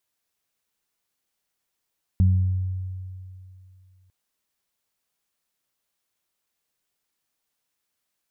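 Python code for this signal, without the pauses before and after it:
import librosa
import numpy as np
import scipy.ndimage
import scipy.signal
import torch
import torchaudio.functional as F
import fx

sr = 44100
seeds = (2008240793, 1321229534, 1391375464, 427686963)

y = fx.additive(sr, length_s=1.9, hz=93.1, level_db=-13.5, upper_db=(-8.5,), decay_s=2.61, upper_decays_s=(0.87,))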